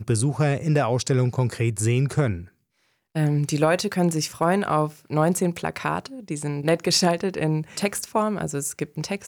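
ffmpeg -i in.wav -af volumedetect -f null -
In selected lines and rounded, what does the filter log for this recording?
mean_volume: -23.5 dB
max_volume: -9.3 dB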